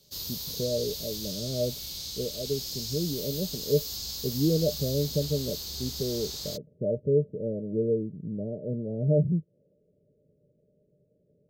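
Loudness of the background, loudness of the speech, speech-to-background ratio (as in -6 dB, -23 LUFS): -34.5 LUFS, -30.5 LUFS, 4.0 dB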